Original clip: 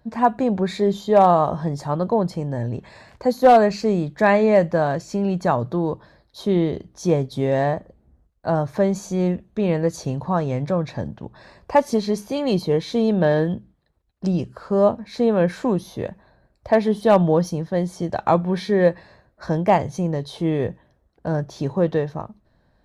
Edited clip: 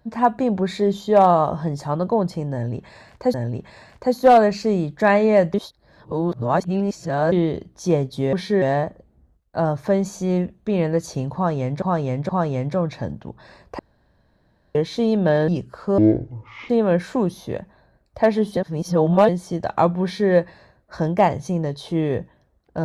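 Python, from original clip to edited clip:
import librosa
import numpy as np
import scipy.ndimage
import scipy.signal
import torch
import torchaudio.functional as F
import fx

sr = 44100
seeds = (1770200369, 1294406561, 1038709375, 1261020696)

y = fx.edit(x, sr, fx.repeat(start_s=2.53, length_s=0.81, count=2),
    fx.reverse_span(start_s=4.73, length_s=1.78),
    fx.repeat(start_s=10.25, length_s=0.47, count=3),
    fx.room_tone_fill(start_s=11.75, length_s=0.96),
    fx.cut(start_s=13.44, length_s=0.87),
    fx.speed_span(start_s=14.81, length_s=0.38, speed=0.53),
    fx.reverse_span(start_s=17.06, length_s=0.72),
    fx.duplicate(start_s=18.52, length_s=0.29, to_s=7.52), tone=tone)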